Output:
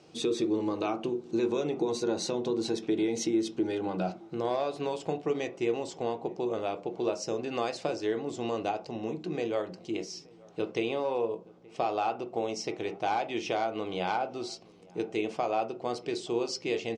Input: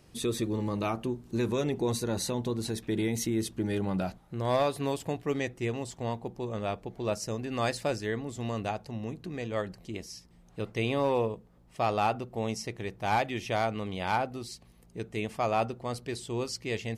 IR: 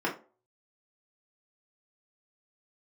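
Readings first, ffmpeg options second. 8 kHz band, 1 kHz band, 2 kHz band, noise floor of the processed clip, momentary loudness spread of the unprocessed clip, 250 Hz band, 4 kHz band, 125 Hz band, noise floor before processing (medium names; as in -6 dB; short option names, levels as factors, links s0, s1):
-2.0 dB, -0.5 dB, -3.0 dB, -54 dBFS, 9 LU, +1.0 dB, 0.0 dB, -9.5 dB, -58 dBFS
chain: -filter_complex "[0:a]highpass=180,equalizer=f=250:t=q:w=4:g=-5,equalizer=f=1100:t=q:w=4:g=-4,equalizer=f=1800:t=q:w=4:g=-10,lowpass=f=6800:w=0.5412,lowpass=f=6800:w=1.3066,acompressor=threshold=0.0224:ratio=6,asplit=2[s0][s1];[s1]adelay=874.6,volume=0.0631,highshelf=f=4000:g=-19.7[s2];[s0][s2]amix=inputs=2:normalize=0,asplit=2[s3][s4];[1:a]atrim=start_sample=2205[s5];[s4][s5]afir=irnorm=-1:irlink=0,volume=0.237[s6];[s3][s6]amix=inputs=2:normalize=0,volume=1.41"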